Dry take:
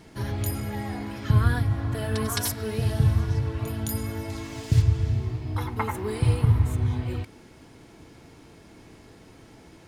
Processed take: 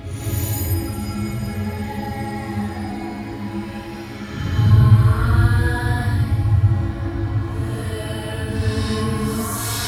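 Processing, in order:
extreme stretch with random phases 4.9×, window 0.10 s, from 0:00.39
reverb whose tail is shaped and stops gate 270 ms rising, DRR −6.5 dB
bit reduction 11 bits
level −3 dB

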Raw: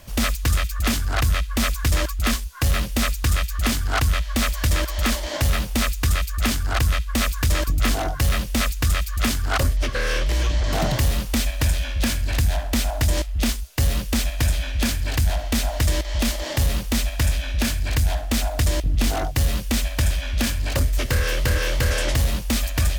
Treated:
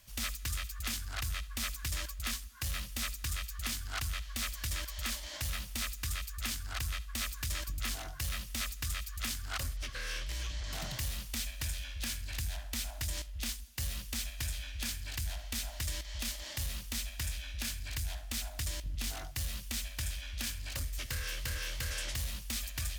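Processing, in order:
guitar amp tone stack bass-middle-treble 5-5-5
on a send: feedback echo with a low-pass in the loop 81 ms, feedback 61%, low-pass 4,000 Hz, level −22 dB
on the sum: level −4 dB

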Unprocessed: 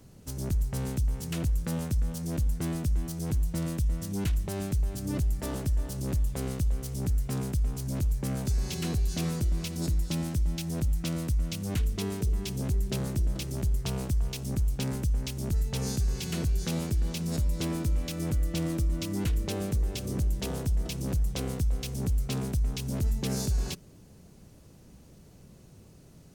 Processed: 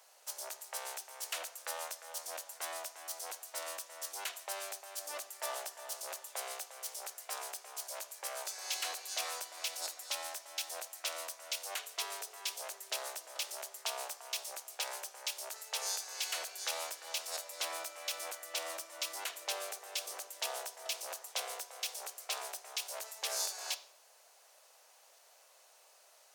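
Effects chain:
Butterworth high-pass 620 Hz 36 dB per octave
on a send: convolution reverb RT60 0.50 s, pre-delay 3 ms, DRR 11 dB
on the sum: level +1.5 dB

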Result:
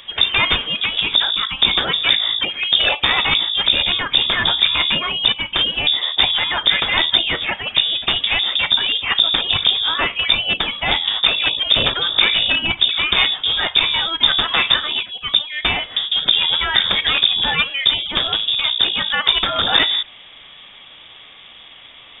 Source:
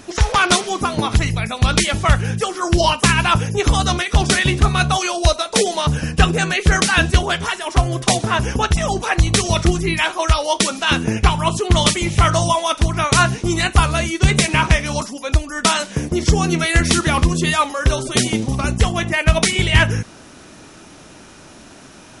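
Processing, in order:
wavefolder on the positive side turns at −14.5 dBFS
voice inversion scrambler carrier 3,600 Hz
boost into a limiter +1.5 dB
level −1 dB

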